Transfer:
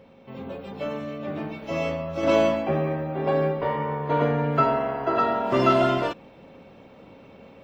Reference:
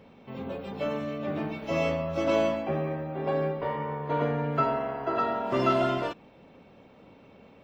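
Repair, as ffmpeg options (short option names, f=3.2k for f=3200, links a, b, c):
-af "bandreject=f=540:w=30,asetnsamples=n=441:p=0,asendcmd='2.23 volume volume -5dB',volume=0dB"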